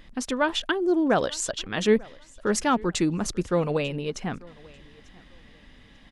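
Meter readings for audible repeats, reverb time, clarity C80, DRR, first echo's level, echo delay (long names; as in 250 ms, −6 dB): 1, no reverb audible, no reverb audible, no reverb audible, −24.0 dB, 893 ms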